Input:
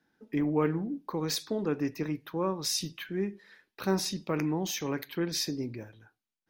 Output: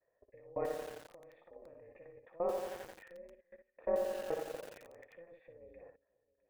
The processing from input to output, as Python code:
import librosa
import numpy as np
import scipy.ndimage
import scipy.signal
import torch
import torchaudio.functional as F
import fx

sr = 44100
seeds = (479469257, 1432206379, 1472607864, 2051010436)

y = fx.env_lowpass_down(x, sr, base_hz=2900.0, full_db=-25.0)
y = fx.band_shelf(y, sr, hz=810.0, db=13.5, octaves=1.0)
y = fx.echo_feedback(y, sr, ms=330, feedback_pct=29, wet_db=-20.5)
y = fx.level_steps(y, sr, step_db=24)
y = fx.room_early_taps(y, sr, ms=(16, 60), db=(-16.0, -6.5))
y = y * np.sin(2.0 * np.pi * 170.0 * np.arange(len(y)) / sr)
y = fx.formant_cascade(y, sr, vowel='e')
y = fx.echo_crushed(y, sr, ms=87, feedback_pct=80, bits=9, wet_db=-5.0)
y = F.gain(torch.from_numpy(y), 5.5).numpy()